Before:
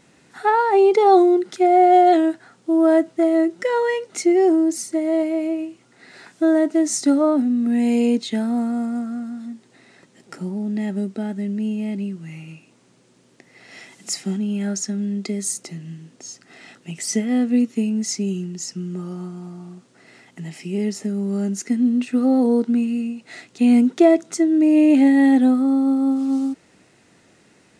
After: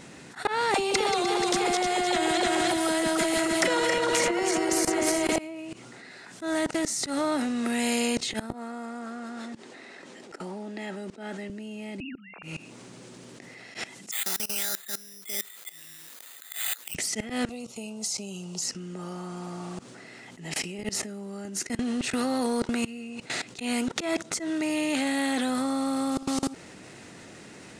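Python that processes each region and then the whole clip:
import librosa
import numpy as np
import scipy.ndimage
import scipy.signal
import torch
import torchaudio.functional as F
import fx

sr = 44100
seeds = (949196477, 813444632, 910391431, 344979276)

y = fx.chain(x, sr, fx.reverse_delay_fb(ms=151, feedback_pct=63, wet_db=-4),
    fx.dispersion(late='lows', ms=64.0, hz=470.0),
    fx.band_squash(depth_pct=100), at=(0.74, 5.36))
y = fx.chain(y, sr, fx.highpass(hz=290.0, slope=12),
    fx.high_shelf(hz=7100.0, db=-10.0), at=(8.53, 11.5))
y = fx.chain(y, sr, fx.sine_speech(),
    fx.highpass(hz=470.0, slope=12),
    fx.air_absorb(metres=150.0), at=(12.0, 12.43))
y = fx.chain(y, sr, fx.highpass(hz=1200.0, slope=12),
    fx.high_shelf(hz=4400.0, db=-8.5),
    fx.resample_bad(factor=8, down='filtered', up='zero_stuff'), at=(14.11, 16.95))
y = fx.chain(y, sr, fx.highpass(hz=110.0, slope=12),
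    fx.fixed_phaser(hz=740.0, stages=4), at=(17.49, 18.62))
y = fx.level_steps(y, sr, step_db=21)
y = fx.auto_swell(y, sr, attack_ms=118.0)
y = fx.spectral_comp(y, sr, ratio=2.0)
y = F.gain(torch.from_numpy(y), 2.5).numpy()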